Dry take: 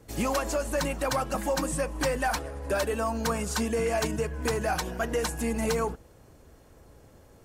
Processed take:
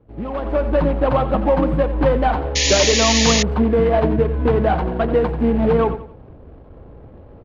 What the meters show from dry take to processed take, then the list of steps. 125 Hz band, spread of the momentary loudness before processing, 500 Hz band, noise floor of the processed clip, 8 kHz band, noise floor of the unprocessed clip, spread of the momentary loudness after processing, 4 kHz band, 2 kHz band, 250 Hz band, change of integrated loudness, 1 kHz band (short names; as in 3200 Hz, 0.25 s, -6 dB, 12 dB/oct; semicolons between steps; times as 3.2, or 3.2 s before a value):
+13.5 dB, 3 LU, +11.5 dB, -43 dBFS, +11.0 dB, -55 dBFS, 7 LU, +15.5 dB, +7.5 dB, +12.5 dB, +11.5 dB, +9.0 dB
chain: median filter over 25 samples; air absorption 420 m; on a send: feedback echo 89 ms, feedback 34%, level -12.5 dB; on the sum: AGC gain up to 13.5 dB; painted sound noise, 2.55–3.43, 1700–7100 Hz -19 dBFS